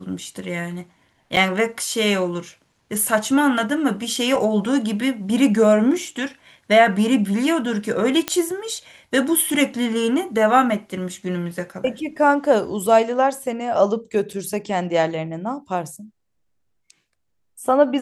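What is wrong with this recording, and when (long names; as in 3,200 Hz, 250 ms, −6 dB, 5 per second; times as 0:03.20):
0:01.36–0:01.37: drop-out 8 ms
0:08.28: click −5 dBFS
0:14.33: drop-out 4.1 ms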